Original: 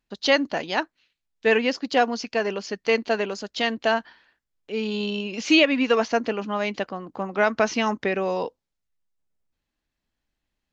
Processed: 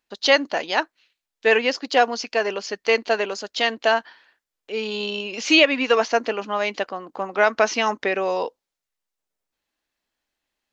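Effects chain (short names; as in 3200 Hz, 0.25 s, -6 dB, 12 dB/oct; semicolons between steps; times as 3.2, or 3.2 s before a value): tone controls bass -15 dB, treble +1 dB; gain +3.5 dB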